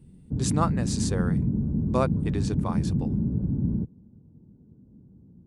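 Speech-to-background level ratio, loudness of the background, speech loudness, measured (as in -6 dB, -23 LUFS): -3.5 dB, -27.5 LUFS, -31.0 LUFS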